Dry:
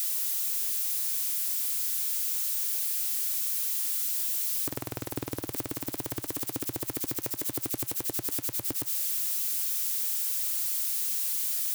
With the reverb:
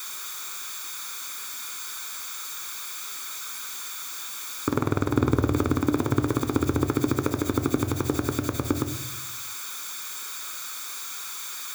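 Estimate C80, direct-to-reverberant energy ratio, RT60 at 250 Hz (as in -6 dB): 16.0 dB, 10.0 dB, 1.2 s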